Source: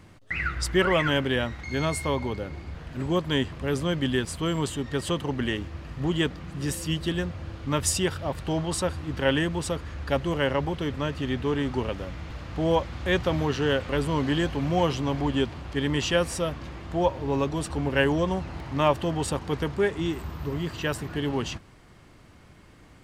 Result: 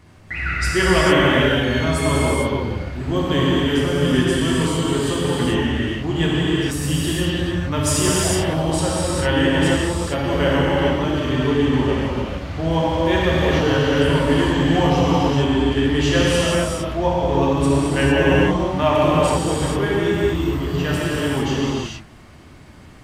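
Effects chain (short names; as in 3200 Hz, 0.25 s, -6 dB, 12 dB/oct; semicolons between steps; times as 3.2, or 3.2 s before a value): non-linear reverb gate 0.48 s flat, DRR -7.5 dB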